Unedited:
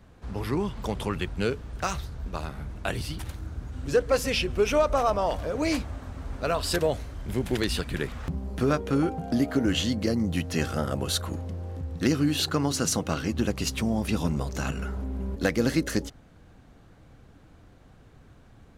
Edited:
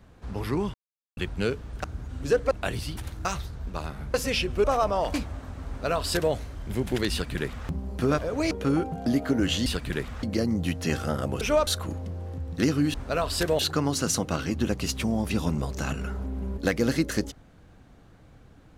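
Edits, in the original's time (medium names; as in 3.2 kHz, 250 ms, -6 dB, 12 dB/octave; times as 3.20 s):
0.74–1.17 s: mute
1.84–2.73 s: swap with 3.47–4.14 s
4.64–4.90 s: move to 11.10 s
5.40–5.73 s: move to 8.77 s
6.27–6.92 s: copy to 12.37 s
7.70–8.27 s: copy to 9.92 s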